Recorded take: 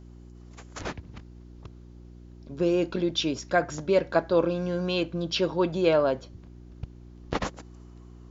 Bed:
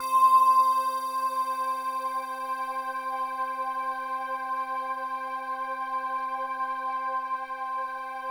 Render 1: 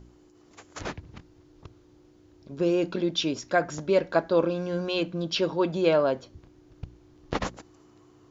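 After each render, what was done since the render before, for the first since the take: de-hum 60 Hz, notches 4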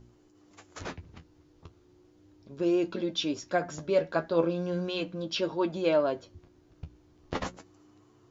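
flange 0.36 Hz, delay 8.5 ms, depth 4.4 ms, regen +43%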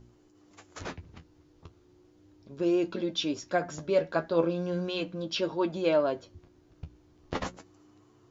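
nothing audible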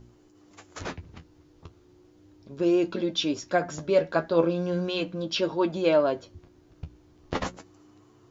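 gain +3.5 dB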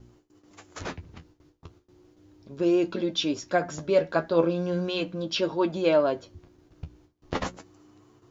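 gate with hold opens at -48 dBFS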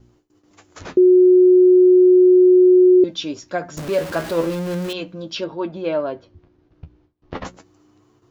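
0.97–3.04 bleep 365 Hz -7.5 dBFS; 3.77–4.93 zero-crossing step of -26 dBFS; 5.44–7.45 air absorption 190 m

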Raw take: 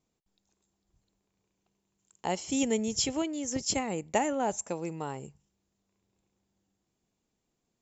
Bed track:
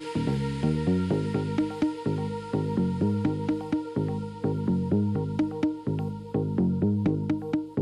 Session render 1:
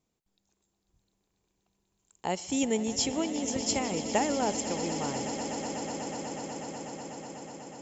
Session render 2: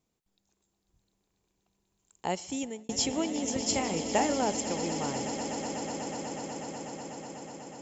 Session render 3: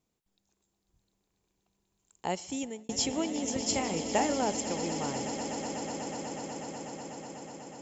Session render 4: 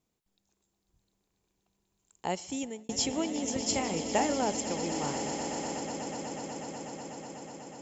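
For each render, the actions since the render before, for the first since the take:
swelling echo 0.123 s, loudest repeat 8, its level -14 dB
2.3–2.89 fade out; 3.7–4.42 doubler 30 ms -8 dB
gain -1 dB
4.89–5.8 doubler 34 ms -5 dB

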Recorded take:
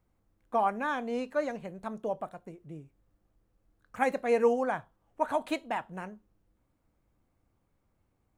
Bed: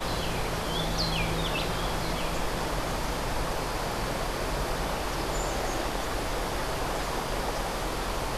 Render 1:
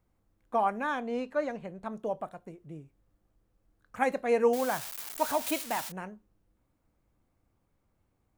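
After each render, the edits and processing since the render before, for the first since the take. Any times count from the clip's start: 1–1.93 high shelf 6500 Hz -8.5 dB; 4.53–5.92 switching spikes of -25.5 dBFS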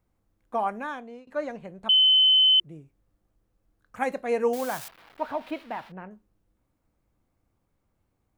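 0.75–1.27 fade out, to -22.5 dB; 1.89–2.6 bleep 3050 Hz -15 dBFS; 4.88–6.11 air absorption 390 m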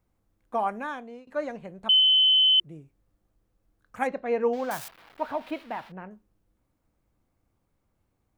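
2–2.58 AM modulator 290 Hz, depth 15%; 4.07–4.71 air absorption 200 m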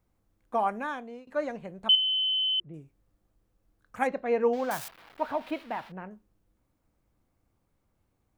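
1.95–2.74 air absorption 420 m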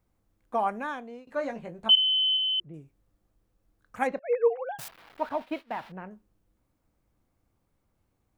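1.25–2.37 doubler 18 ms -5.5 dB; 4.19–4.79 sine-wave speech; 5.29–5.78 expander -39 dBFS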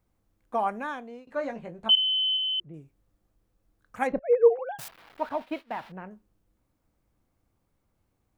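1.26–2.77 high shelf 5400 Hz -5 dB; 4.12–4.59 tilt -4.5 dB/oct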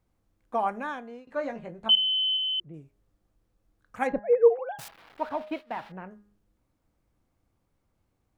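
high shelf 11000 Hz -6.5 dB; de-hum 205.7 Hz, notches 10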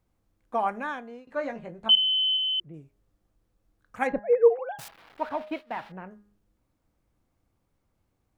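dynamic EQ 2000 Hz, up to +3 dB, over -40 dBFS, Q 1.1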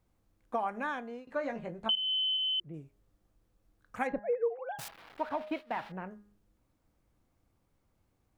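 compressor 4:1, threshold -30 dBFS, peak gain reduction 14.5 dB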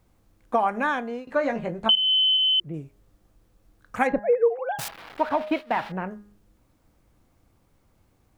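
gain +10.5 dB

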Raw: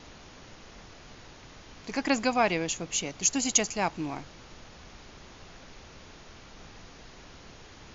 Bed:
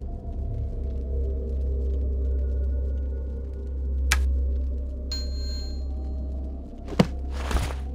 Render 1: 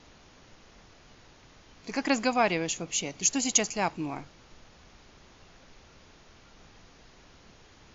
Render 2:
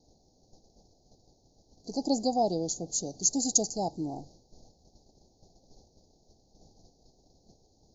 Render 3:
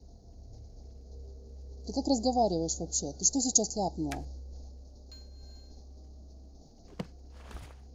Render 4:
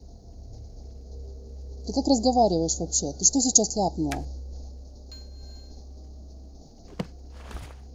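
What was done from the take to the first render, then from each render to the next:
noise print and reduce 6 dB
gate -53 dBFS, range -8 dB; Chebyshev band-stop 790–4300 Hz, order 4
add bed -19.5 dB
gain +6.5 dB

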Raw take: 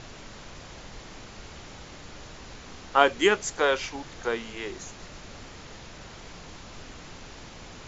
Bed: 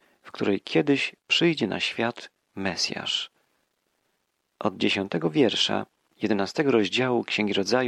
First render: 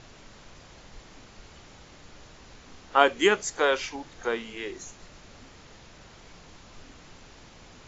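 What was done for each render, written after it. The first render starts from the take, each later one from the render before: noise print and reduce 6 dB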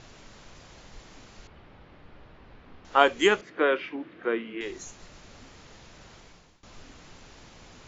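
1.47–2.85 air absorption 390 m; 3.41–4.61 speaker cabinet 170–2800 Hz, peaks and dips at 200 Hz +5 dB, 320 Hz +10 dB, 840 Hz -10 dB; 6.15–6.63 fade out, to -20 dB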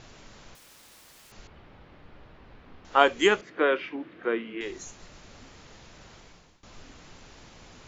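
0.55–1.32 wrapped overs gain 49 dB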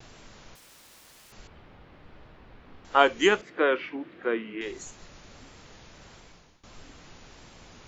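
vibrato 1.5 Hz 59 cents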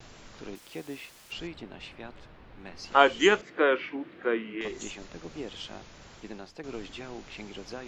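add bed -18 dB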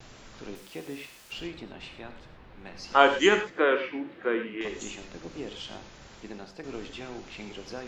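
non-linear reverb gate 0.14 s flat, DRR 7 dB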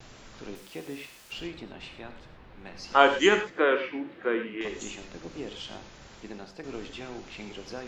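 nothing audible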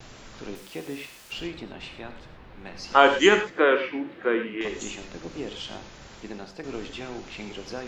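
gain +3.5 dB; limiter -2 dBFS, peak gain reduction 2.5 dB

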